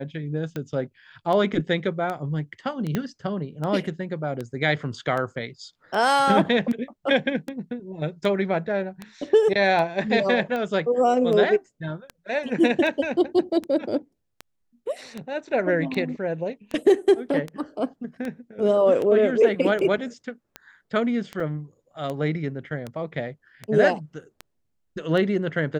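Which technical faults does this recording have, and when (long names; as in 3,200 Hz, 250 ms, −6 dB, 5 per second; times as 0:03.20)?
scratch tick 78 rpm −18 dBFS
0:02.95: click −12 dBFS
0:21.40: drop-out 3.8 ms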